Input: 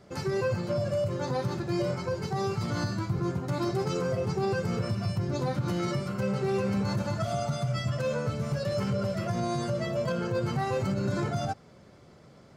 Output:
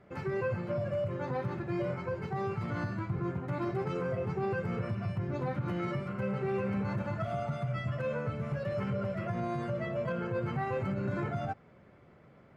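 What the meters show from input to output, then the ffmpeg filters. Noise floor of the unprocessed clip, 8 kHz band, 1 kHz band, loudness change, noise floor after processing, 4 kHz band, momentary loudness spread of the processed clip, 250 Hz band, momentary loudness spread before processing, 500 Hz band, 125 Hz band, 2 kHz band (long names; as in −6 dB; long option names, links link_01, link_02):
−54 dBFS, below −20 dB, −3.5 dB, −4.5 dB, −58 dBFS, −13.5 dB, 2 LU, −4.5 dB, 2 LU, −4.0 dB, −4.5 dB, −2.0 dB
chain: -af "highshelf=frequency=3400:width_type=q:width=1.5:gain=-13.5,volume=-4.5dB"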